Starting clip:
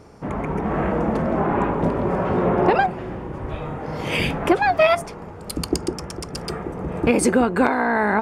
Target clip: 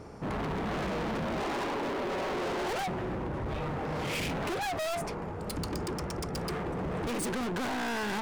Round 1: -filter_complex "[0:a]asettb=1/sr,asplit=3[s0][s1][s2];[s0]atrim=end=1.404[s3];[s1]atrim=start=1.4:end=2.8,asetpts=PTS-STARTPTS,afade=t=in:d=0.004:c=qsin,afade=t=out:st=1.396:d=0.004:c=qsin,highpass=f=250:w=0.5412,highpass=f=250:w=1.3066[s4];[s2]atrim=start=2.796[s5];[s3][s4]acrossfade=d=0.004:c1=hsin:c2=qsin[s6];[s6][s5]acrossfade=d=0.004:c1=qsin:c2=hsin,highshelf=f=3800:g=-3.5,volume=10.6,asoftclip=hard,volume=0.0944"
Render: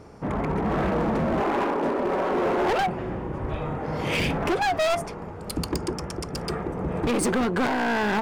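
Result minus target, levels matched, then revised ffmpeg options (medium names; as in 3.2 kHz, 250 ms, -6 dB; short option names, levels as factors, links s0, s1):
overload inside the chain: distortion -5 dB
-filter_complex "[0:a]asettb=1/sr,asplit=3[s0][s1][s2];[s0]atrim=end=1.404[s3];[s1]atrim=start=1.4:end=2.8,asetpts=PTS-STARTPTS,afade=t=in:d=0.004:c=qsin,afade=t=out:st=1.396:d=0.004:c=qsin,highpass=f=250:w=0.5412,highpass=f=250:w=1.3066[s4];[s2]atrim=start=2.796[s5];[s3][s4]acrossfade=d=0.004:c1=hsin:c2=qsin[s6];[s6][s5]acrossfade=d=0.004:c1=qsin:c2=hsin,highshelf=f=3800:g=-3.5,volume=37.6,asoftclip=hard,volume=0.0266"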